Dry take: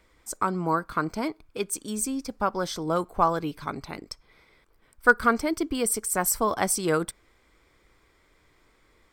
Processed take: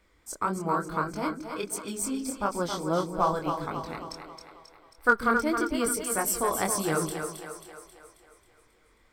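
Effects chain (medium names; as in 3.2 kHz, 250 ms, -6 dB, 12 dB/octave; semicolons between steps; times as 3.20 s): chorus 1.6 Hz, delay 19.5 ms, depth 7.4 ms; two-band feedback delay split 380 Hz, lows 141 ms, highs 269 ms, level -6.5 dB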